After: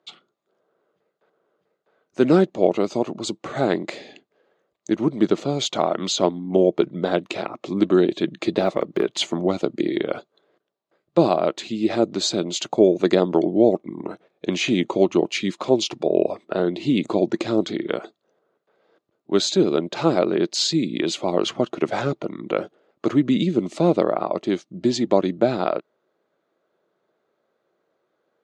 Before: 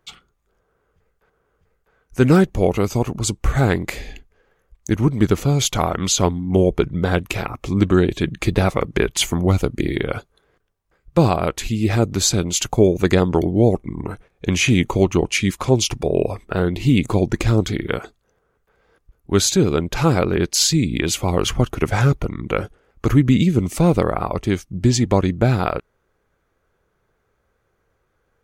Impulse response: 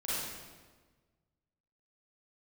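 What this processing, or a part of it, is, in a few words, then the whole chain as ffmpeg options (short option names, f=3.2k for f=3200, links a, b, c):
television speaker: -filter_complex "[0:a]highpass=f=180:w=0.5412,highpass=f=180:w=1.3066,equalizer=f=340:t=q:w=4:g=6,equalizer=f=620:t=q:w=4:g=9,equalizer=f=1.6k:t=q:w=4:g=-3,equalizer=f=2.3k:t=q:w=4:g=-3,equalizer=f=3.9k:t=q:w=4:g=5,equalizer=f=5.8k:t=q:w=4:g=-5,lowpass=f=6.6k:w=0.5412,lowpass=f=6.6k:w=1.3066,asettb=1/sr,asplit=3[a][b][c];[a]atrim=end=8.604[d];[b]atrim=start=8.6:end=9.16,asetpts=PTS-STARTPTS,afade=t=in:d=0.004:c=qsin,afade=t=out:st=0.556:d=0.004:c=qsin,deesser=0.8[e];[c]atrim=start=9.156[f];[d][e]acrossfade=d=0.004:c1=hsin:c2=qsin[g];[g][f]acrossfade=d=0.004:c1=qsin:c2=hsin,volume=-4dB"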